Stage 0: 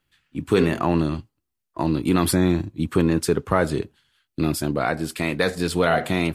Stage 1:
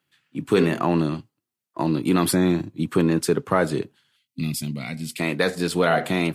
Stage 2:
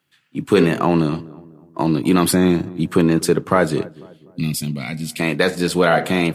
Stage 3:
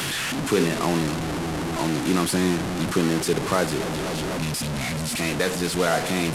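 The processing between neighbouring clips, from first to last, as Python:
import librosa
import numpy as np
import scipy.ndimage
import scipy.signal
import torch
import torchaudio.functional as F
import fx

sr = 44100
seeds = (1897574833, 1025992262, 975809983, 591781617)

y1 = scipy.signal.sosfilt(scipy.signal.butter(4, 120.0, 'highpass', fs=sr, output='sos'), x)
y1 = fx.spec_box(y1, sr, start_s=4.16, length_s=1.02, low_hz=270.0, high_hz=1900.0, gain_db=-17)
y2 = fx.echo_filtered(y1, sr, ms=248, feedback_pct=45, hz=1100.0, wet_db=-19.5)
y2 = y2 * librosa.db_to_amplitude(4.5)
y3 = fx.delta_mod(y2, sr, bps=64000, step_db=-14.0)
y3 = y3 * librosa.db_to_amplitude(-7.0)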